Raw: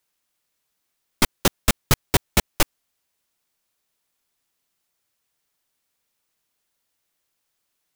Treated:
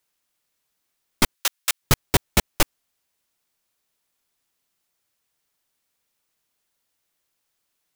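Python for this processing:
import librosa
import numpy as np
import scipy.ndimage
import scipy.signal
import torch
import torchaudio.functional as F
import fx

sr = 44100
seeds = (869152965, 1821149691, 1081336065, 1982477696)

y = fx.bessel_highpass(x, sr, hz=1600.0, order=2, at=(1.34, 1.81), fade=0.02)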